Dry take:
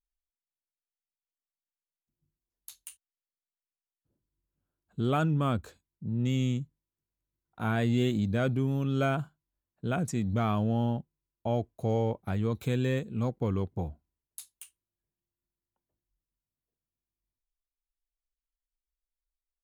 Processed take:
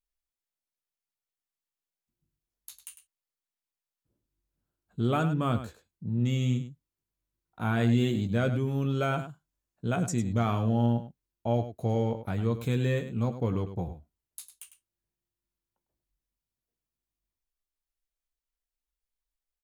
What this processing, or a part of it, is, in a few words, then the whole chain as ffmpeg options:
slapback doubling: -filter_complex "[0:a]asettb=1/sr,asplit=3[s0][s1][s2];[s0]atrim=end=9.164[s3];[s1]atrim=start=9.16:end=10.66,asetpts=PTS-STARTPTS,afade=t=in:d=0.004:c=qsin,afade=t=out:st=1.496:d=0.004:c=qsin,equalizer=f=6800:t=o:w=0.56:g=5.5[s4];[s2]atrim=start=10.656[s5];[s3][s4]acrossfade=d=0.004:c1=hsin:c2=qsin[s6];[s6][s5]acrossfade=d=0.004:c1=qsin:c2=hsin,asplit=3[s7][s8][s9];[s8]adelay=17,volume=0.355[s10];[s9]adelay=102,volume=0.282[s11];[s7][s10][s11]amix=inputs=3:normalize=0"

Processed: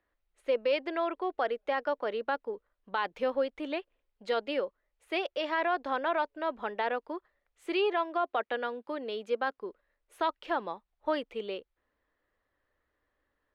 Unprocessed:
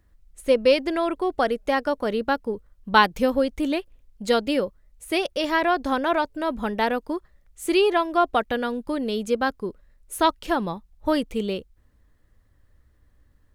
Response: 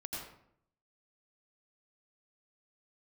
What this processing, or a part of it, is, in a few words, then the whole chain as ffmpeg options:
DJ mixer with the lows and highs turned down: -filter_complex "[0:a]acrossover=split=350 3900:gain=0.0794 1 0.0708[s0][s1][s2];[s0][s1][s2]amix=inputs=3:normalize=0,alimiter=limit=0.188:level=0:latency=1:release=20,asettb=1/sr,asplit=3[s3][s4][s5];[s3]atrim=end=7.984[s6];[s4]atrim=start=7.98:end=9.59,asetpts=PTS-STARTPTS,afade=t=in:d=0.004:c=qsin,afade=t=out:st=1.606:d=0.004:c=qsin,highpass=110[s7];[s5]atrim=start=9.586[s8];[s6][s7]acrossfade=d=0.004:c1=hsin:c2=qsin[s9];[s9][s8]acrossfade=d=0.004:c1=qsin:c2=hsin,volume=0.562"

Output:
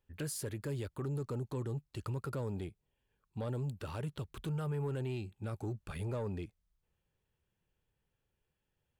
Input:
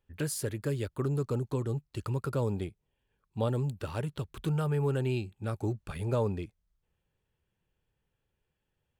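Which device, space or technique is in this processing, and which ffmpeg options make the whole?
soft clipper into limiter: -af "asoftclip=type=tanh:threshold=0.075,alimiter=level_in=1.78:limit=0.0631:level=0:latency=1,volume=0.562,volume=0.75"

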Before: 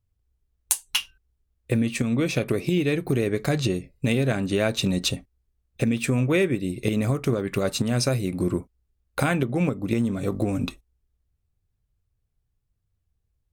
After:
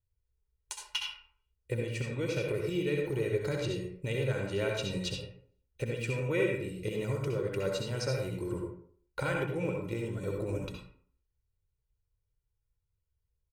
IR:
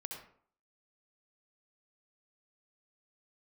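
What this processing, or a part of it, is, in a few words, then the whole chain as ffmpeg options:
microphone above a desk: -filter_complex "[0:a]bandreject=f=3600:w=17,acrossover=split=7100[s0][s1];[s1]acompressor=threshold=0.00501:ratio=4:attack=1:release=60[s2];[s0][s2]amix=inputs=2:normalize=0,aecho=1:1:2.1:0.71[s3];[1:a]atrim=start_sample=2205[s4];[s3][s4]afir=irnorm=-1:irlink=0,volume=0.422"

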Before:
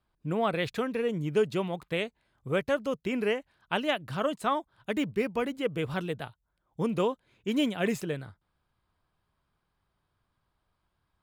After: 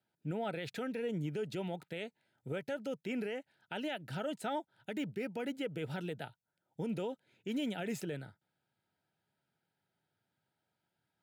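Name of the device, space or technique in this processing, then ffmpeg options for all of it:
PA system with an anti-feedback notch: -af "highpass=f=120:w=0.5412,highpass=f=120:w=1.3066,asuperstop=centerf=1100:order=8:qfactor=3.7,alimiter=level_in=1.12:limit=0.0631:level=0:latency=1:release=64,volume=0.891,volume=0.631"

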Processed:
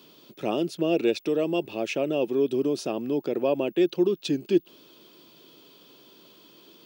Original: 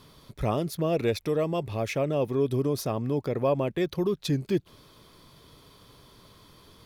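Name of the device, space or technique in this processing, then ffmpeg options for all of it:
old television with a line whistle: -af "highpass=f=190:w=0.5412,highpass=f=190:w=1.3066,equalizer=f=340:t=q:w=4:g=8,equalizer=f=1100:t=q:w=4:g=-7,equalizer=f=2000:t=q:w=4:g=-7,equalizer=f=2800:t=q:w=4:g=10,lowpass=f=8700:w=0.5412,lowpass=f=8700:w=1.3066,aeval=exprs='val(0)+0.00141*sin(2*PI*15625*n/s)':c=same"

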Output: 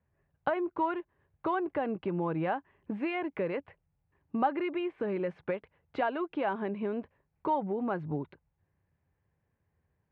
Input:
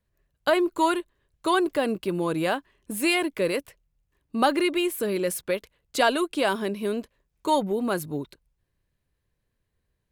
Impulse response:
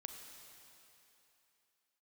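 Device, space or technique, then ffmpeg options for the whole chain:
bass amplifier: -af "acompressor=threshold=0.0251:ratio=3,highpass=73,equalizer=f=88:t=q:w=4:g=8,equalizer=f=160:t=q:w=4:g=5,equalizer=f=820:t=q:w=4:g=8,lowpass=f=2300:w=0.5412,lowpass=f=2300:w=1.3066"

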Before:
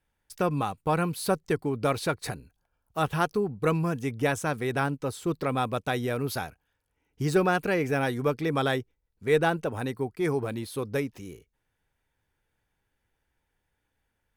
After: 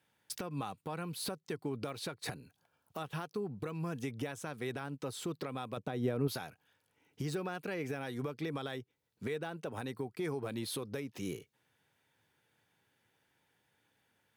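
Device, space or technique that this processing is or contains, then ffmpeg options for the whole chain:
broadcast voice chain: -filter_complex "[0:a]highpass=f=110:w=0.5412,highpass=f=110:w=1.3066,deesser=0.65,acompressor=threshold=0.0178:ratio=4,equalizer=f=3600:t=o:w=0.99:g=4,alimiter=level_in=2.37:limit=0.0631:level=0:latency=1:release=313,volume=0.422,asettb=1/sr,asplit=3[s0][s1][s2];[s0]atrim=end=5.774[s3];[s1]atrim=start=5.77:end=6.28,asetpts=PTS-STARTPTS,afade=t=in:d=0.004:c=qsin,afade=t=out:st=0.506:d=0.004:c=qsin,tiltshelf=f=1200:g=7[s4];[s2]atrim=start=6.276[s5];[s3][s4]acrossfade=d=0.004:c1=hsin:c2=qsin[s6];[s6][s5]acrossfade=d=0.004:c1=qsin:c2=hsin,volume=1.58"

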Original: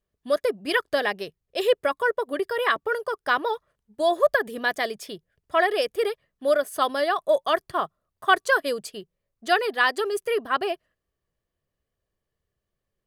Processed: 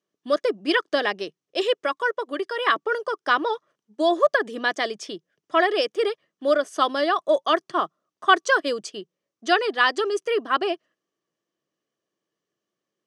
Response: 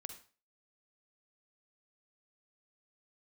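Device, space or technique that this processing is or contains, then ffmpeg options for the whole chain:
television speaker: -filter_complex "[0:a]asettb=1/sr,asplit=3[s0][s1][s2];[s0]atrim=end=1.624[s3];[s1]atrim=start=1.62:end=2.67,asetpts=PTS-STARTPTS,afade=t=in:d=0.004:c=qsin,afade=t=out:st=1.046:d=0.004:c=qsin,equalizer=f=250:w=0.44:g=-5[s4];[s2]atrim=start=2.666[s5];[s3][s4]acrossfade=d=0.004:c1=hsin:c2=qsin[s6];[s6][s5]acrossfade=d=0.004:c1=qsin:c2=hsin,highpass=f=170:w=0.5412,highpass=f=170:w=1.3066,equalizer=f=320:t=q:w=4:g=9,equalizer=f=1200:t=q:w=4:g=4,equalizer=f=3100:t=q:w=4:g=4,equalizer=f=5900:t=q:w=4:g=8,lowpass=f=8100:w=0.5412,lowpass=f=8100:w=1.3066"

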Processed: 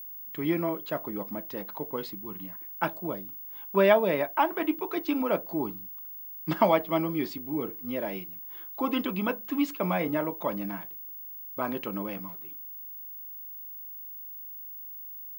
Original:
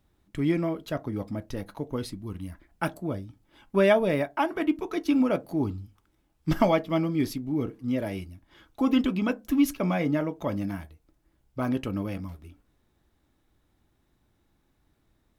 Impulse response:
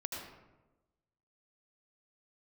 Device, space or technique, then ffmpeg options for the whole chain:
old television with a line whistle: -af "highpass=f=180:w=0.5412,highpass=f=180:w=1.3066,equalizer=f=260:t=q:w=4:g=-8,equalizer=f=980:t=q:w=4:g=6,equalizer=f=5900:t=q:w=4:g=-9,lowpass=f=7100:w=0.5412,lowpass=f=7100:w=1.3066,aeval=exprs='val(0)+0.0112*sin(2*PI*15625*n/s)':c=same"

